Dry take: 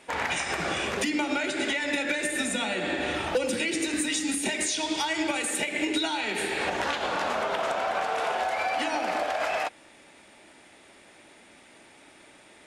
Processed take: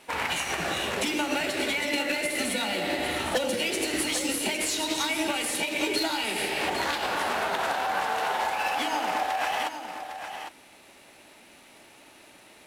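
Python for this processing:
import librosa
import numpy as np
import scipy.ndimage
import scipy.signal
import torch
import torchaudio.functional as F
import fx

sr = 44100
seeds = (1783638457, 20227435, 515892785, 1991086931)

y = fx.cvsd(x, sr, bps=64000)
y = fx.formant_shift(y, sr, semitones=2)
y = y + 10.0 ** (-9.0 / 20.0) * np.pad(y, (int(806 * sr / 1000.0), 0))[:len(y)]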